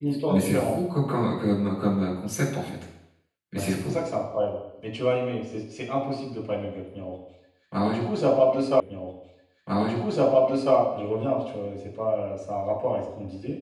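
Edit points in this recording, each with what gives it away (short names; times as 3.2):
8.8 repeat of the last 1.95 s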